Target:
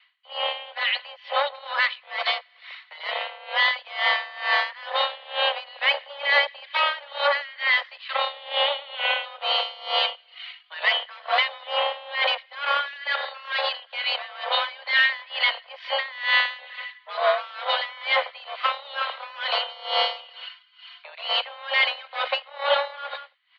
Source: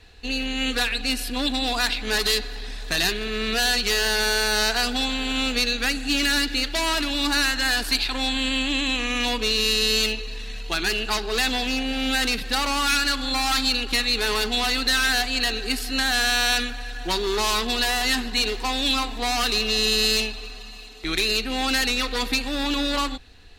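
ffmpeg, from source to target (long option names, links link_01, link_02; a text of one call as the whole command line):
ffmpeg -i in.wav -filter_complex "[0:a]acrossover=split=810|1900[link_01][link_02][link_03];[link_01]acrusher=bits=3:mix=0:aa=0.5[link_04];[link_04][link_02][link_03]amix=inputs=3:normalize=0,bandreject=frequency=2500:width=14,asplit=2[link_05][link_06];[link_06]aecho=0:1:189:0.0794[link_07];[link_05][link_07]amix=inputs=2:normalize=0,dynaudnorm=framelen=220:gausssize=3:maxgain=8.5dB,highpass=frequency=230:width_type=q:width=0.5412,highpass=frequency=230:width_type=q:width=1.307,lowpass=frequency=3100:width_type=q:width=0.5176,lowpass=frequency=3100:width_type=q:width=0.7071,lowpass=frequency=3100:width_type=q:width=1.932,afreqshift=280,aeval=exprs='val(0)*pow(10,-22*(0.5-0.5*cos(2*PI*2.2*n/s))/20)':channel_layout=same" out.wav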